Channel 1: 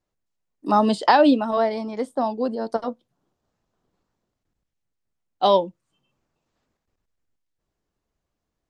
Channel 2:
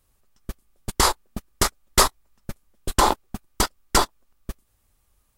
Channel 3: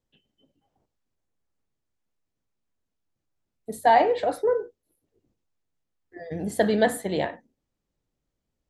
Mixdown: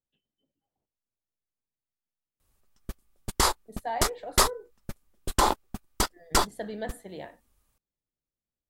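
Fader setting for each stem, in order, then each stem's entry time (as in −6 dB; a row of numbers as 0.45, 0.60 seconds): muted, −4.5 dB, −14.5 dB; muted, 2.40 s, 0.00 s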